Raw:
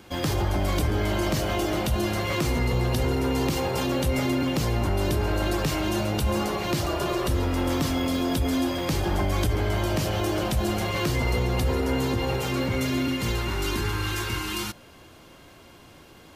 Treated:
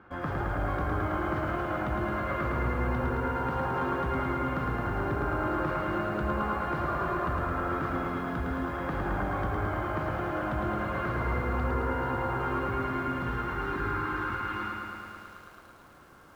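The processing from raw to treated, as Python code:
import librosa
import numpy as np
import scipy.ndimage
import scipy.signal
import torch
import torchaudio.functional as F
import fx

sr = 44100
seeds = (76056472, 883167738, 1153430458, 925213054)

y = 10.0 ** (-15.0 / 20.0) * np.tanh(x / 10.0 ** (-15.0 / 20.0))
y = fx.lowpass_res(y, sr, hz=1400.0, q=3.8)
y = fx.echo_crushed(y, sr, ms=109, feedback_pct=80, bits=9, wet_db=-3.5)
y = y * librosa.db_to_amplitude(-8.0)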